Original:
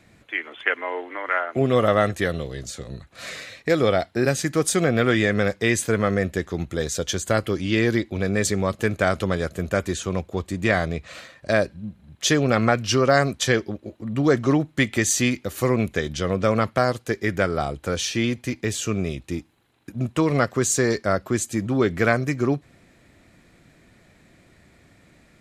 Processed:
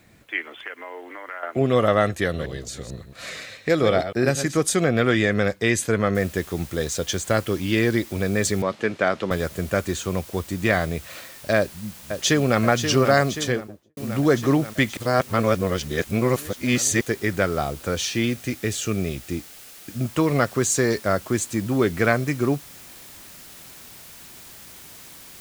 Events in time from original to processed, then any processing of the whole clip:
0.59–1.43 s: compression 2.5:1, threshold -36 dBFS
2.24–4.61 s: chunks repeated in reverse 111 ms, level -9.5 dB
6.15 s: noise floor step -67 dB -44 dB
8.62–9.31 s: band-pass 200–4200 Hz
11.57–12.61 s: echo throw 530 ms, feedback 70%, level -7.5 dB
13.25–13.97 s: studio fade out
14.97–17.01 s: reverse
18.27–20.03 s: band-stop 1 kHz, Q 5.6

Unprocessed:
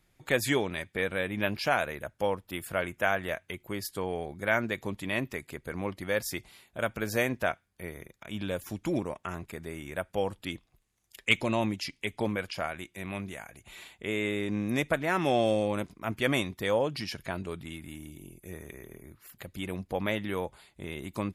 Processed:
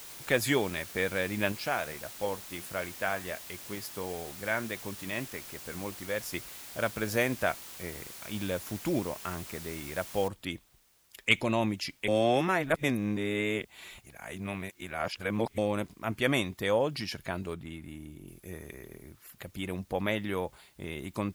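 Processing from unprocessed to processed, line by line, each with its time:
1.52–6.34 s: flange 1.5 Hz, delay 0.8 ms, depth 6.6 ms, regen +84%
10.28 s: noise floor step -46 dB -67 dB
12.08–15.58 s: reverse
17.54–18.28 s: treble shelf 2.4 kHz -8 dB

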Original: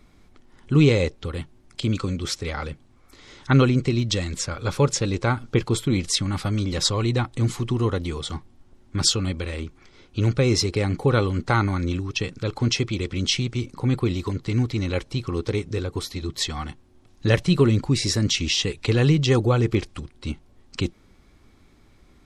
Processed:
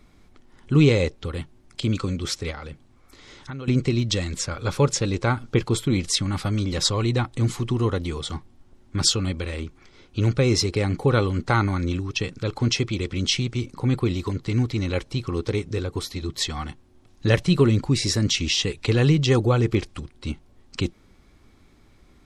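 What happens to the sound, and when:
2.51–3.68 s: compression 10:1, threshold -31 dBFS

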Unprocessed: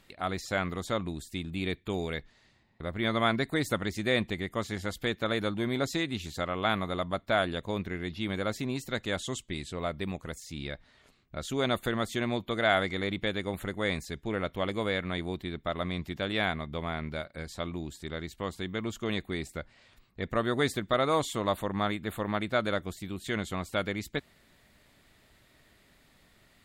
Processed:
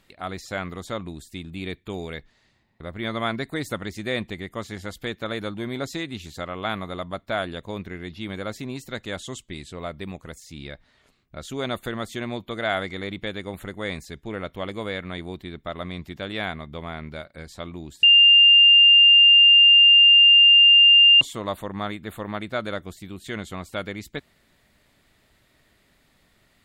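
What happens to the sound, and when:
18.03–21.21 s: bleep 2.8 kHz -9.5 dBFS

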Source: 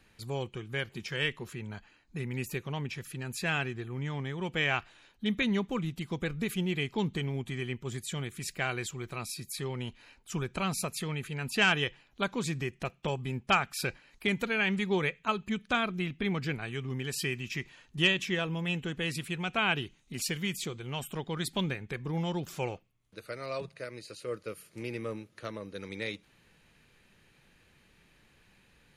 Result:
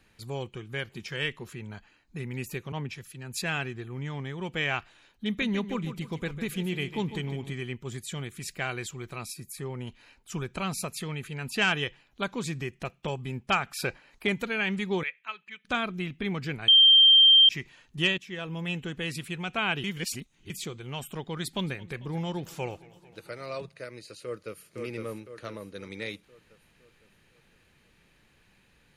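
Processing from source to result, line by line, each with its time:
2.72–3.42 s: three bands expanded up and down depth 100%
5.26–7.53 s: feedback delay 150 ms, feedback 37%, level -11 dB
9.33–9.87 s: peaking EQ 3.8 kHz -9.5 dB 1.3 oct
13.66–14.33 s: peaking EQ 750 Hz +5.5 dB 2.3 oct
15.03–15.65 s: band-pass filter 2.2 kHz, Q 1.9
16.68–17.49 s: bleep 3.16 kHz -13 dBFS
18.18–18.61 s: fade in, from -17 dB
19.84–20.50 s: reverse
21.43–23.62 s: modulated delay 224 ms, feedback 74%, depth 100 cents, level -21.5 dB
24.23–24.69 s: echo throw 510 ms, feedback 50%, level -3.5 dB

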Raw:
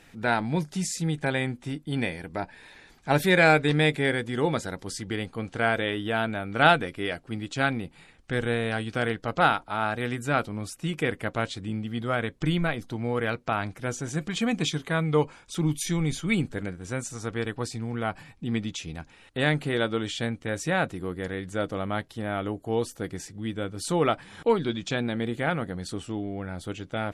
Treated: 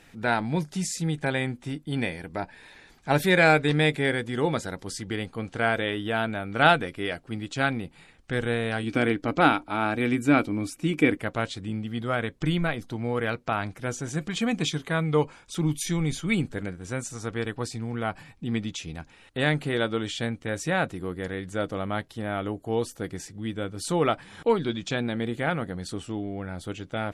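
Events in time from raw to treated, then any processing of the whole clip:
8.83–11.17 s: small resonant body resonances 290/2300 Hz, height 14 dB

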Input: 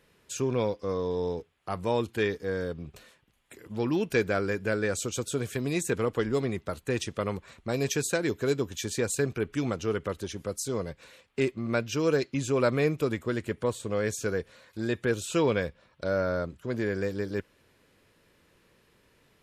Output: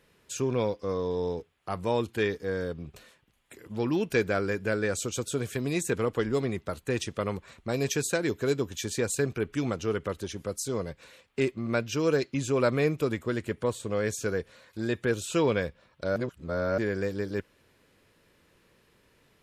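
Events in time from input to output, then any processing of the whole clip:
16.16–16.78 s: reverse

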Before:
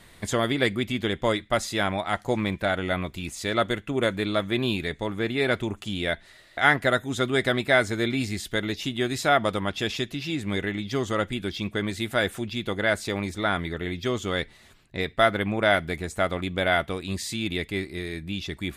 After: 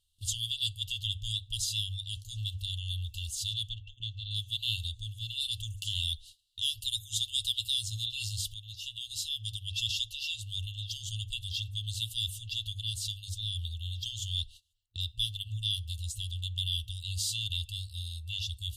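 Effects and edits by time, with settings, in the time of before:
3.69–4.31 s: distance through air 210 m
5.40–7.81 s: treble shelf 5.1 kHz +5.5 dB
8.54–9.66 s: fade in, from -12.5 dB
whole clip: FFT band-reject 110–2700 Hz; hum notches 50/100 Hz; gate -50 dBFS, range -23 dB; trim +1.5 dB

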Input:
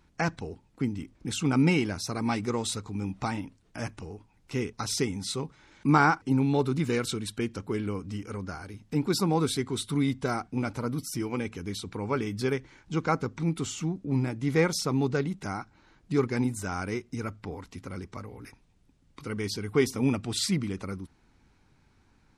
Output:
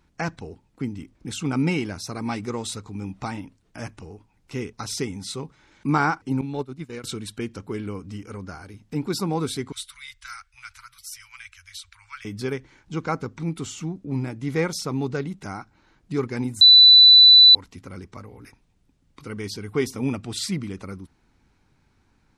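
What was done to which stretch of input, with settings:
6.41–7.04 s: expander -20 dBFS
9.72–12.25 s: inverse Chebyshev band-stop 180–490 Hz, stop band 70 dB
16.61–17.55 s: bleep 3.98 kHz -7 dBFS

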